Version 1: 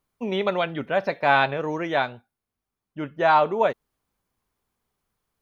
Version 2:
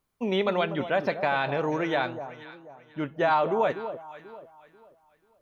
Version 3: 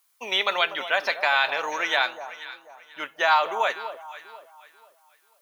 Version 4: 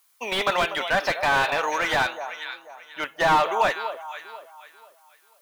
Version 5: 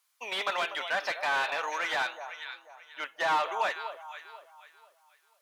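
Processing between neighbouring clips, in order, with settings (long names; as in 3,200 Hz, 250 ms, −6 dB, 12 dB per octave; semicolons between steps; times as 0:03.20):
brickwall limiter −15 dBFS, peak gain reduction 9 dB; delay that swaps between a low-pass and a high-pass 244 ms, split 1,100 Hz, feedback 55%, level −10 dB
high-pass filter 1,000 Hz 12 dB per octave; high-shelf EQ 3,600 Hz +11 dB; level +6.5 dB
slew-rate limiting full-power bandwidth 110 Hz; level +4 dB
meter weighting curve A; level −7.5 dB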